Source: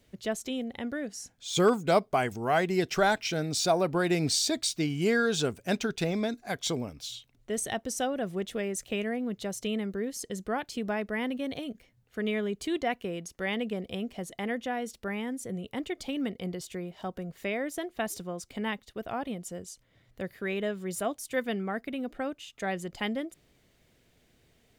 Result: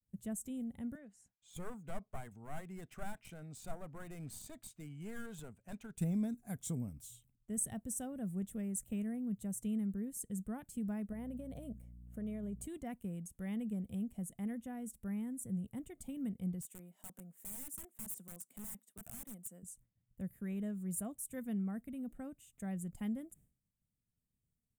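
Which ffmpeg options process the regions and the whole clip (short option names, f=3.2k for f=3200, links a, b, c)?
-filter_complex "[0:a]asettb=1/sr,asplit=3[a][b][c];[a]atrim=end=0.954[d];[b]atrim=start=0.95:end=5.97,asetpts=PTS-STARTPTS,afade=t=in:d=0.004:c=qsin,afade=t=out:st=5.016:d=0.004:c=qsin,acrossover=split=510 4900:gain=0.224 1 0.0708[e][f][g];[e][f][g]amix=inputs=3:normalize=0,bandreject=f=5.6k:w=14,aeval=exprs='clip(val(0),-1,0.0251)':c=same[h];[c]atrim=start=5.966[i];[d][h]acrossfade=d=0.004:c1=hsin:c2=qsin[j];[j][i]acrossfade=d=0.004:c1=qsin:c2=hsin,asettb=1/sr,asplit=3[k][l][m];[k]atrim=end=11.124[n];[l]atrim=start=11.12:end=12.67,asetpts=PTS-STARTPTS,afade=t=in:d=0.004:c=qsin,afade=t=out:st=1.546:d=0.004:c=qsin,equalizer=f=610:t=o:w=0.81:g=12.5,acompressor=threshold=-30dB:ratio=4:attack=3.2:release=140:knee=1:detection=peak,aeval=exprs='val(0)+0.00316*(sin(2*PI*60*n/s)+sin(2*PI*2*60*n/s)/2+sin(2*PI*3*60*n/s)/3+sin(2*PI*4*60*n/s)/4+sin(2*PI*5*60*n/s)/5)':c=same[o];[m]atrim=start=12.666[p];[n][o]acrossfade=d=0.004:c1=hsin:c2=qsin[q];[q][p]acrossfade=d=0.004:c1=qsin:c2=hsin,asettb=1/sr,asplit=3[r][s][t];[r]atrim=end=16.624[u];[s]atrim=start=16.62:end=19.63,asetpts=PTS-STARTPTS,afade=t=in:d=0.004:c=qsin,afade=t=out:st=3.006:d=0.004:c=qsin,highpass=f=190:w=0.5412,highpass=f=190:w=1.3066,lowshelf=f=310:g=-11.5,aeval=exprs='(mod(44.7*val(0)+1,2)-1)/44.7':c=same[v];[t]atrim=start=19.626[w];[u][v]acrossfade=d=0.004:c1=hsin:c2=qsin[x];[x][w]acrossfade=d=0.004:c1=qsin:c2=hsin,agate=range=-33dB:threshold=-53dB:ratio=3:detection=peak,firequalizer=gain_entry='entry(200,0);entry(350,-16);entry(4600,-27);entry(8100,0)':delay=0.05:min_phase=1,volume=-1.5dB"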